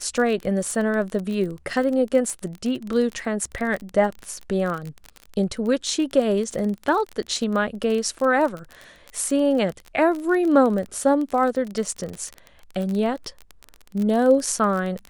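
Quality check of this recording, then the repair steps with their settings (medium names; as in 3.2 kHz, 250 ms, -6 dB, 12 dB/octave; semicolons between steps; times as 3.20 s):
crackle 27 per s -26 dBFS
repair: de-click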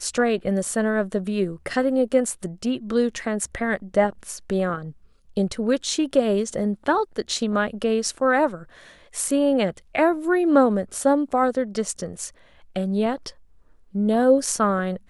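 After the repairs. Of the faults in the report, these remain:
nothing left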